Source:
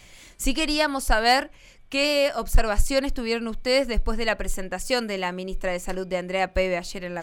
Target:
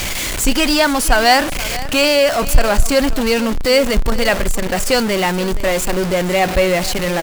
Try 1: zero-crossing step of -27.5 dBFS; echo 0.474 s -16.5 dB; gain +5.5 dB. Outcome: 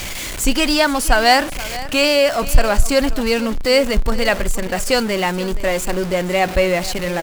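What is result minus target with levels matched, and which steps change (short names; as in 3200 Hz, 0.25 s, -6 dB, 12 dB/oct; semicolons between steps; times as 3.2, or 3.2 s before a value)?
zero-crossing step: distortion -5 dB
change: zero-crossing step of -21.5 dBFS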